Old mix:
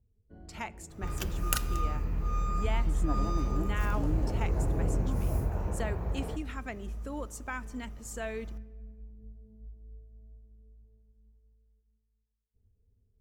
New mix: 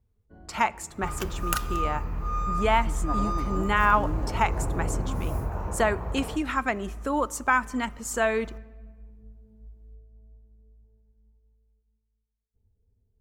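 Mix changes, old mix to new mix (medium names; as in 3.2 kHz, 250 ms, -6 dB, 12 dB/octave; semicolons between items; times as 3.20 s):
speech +10.0 dB; master: add peaking EQ 1.1 kHz +8.5 dB 1.2 oct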